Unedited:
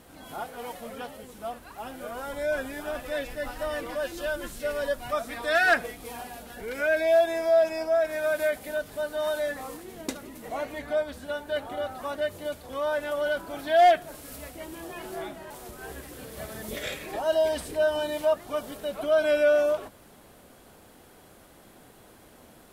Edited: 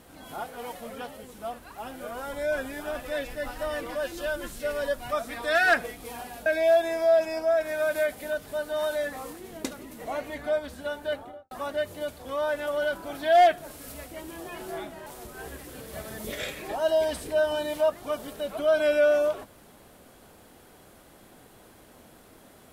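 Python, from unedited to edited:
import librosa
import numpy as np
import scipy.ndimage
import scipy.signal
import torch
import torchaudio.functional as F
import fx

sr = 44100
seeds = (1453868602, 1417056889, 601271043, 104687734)

y = fx.studio_fade_out(x, sr, start_s=11.49, length_s=0.46)
y = fx.edit(y, sr, fx.cut(start_s=6.46, length_s=0.44), tone=tone)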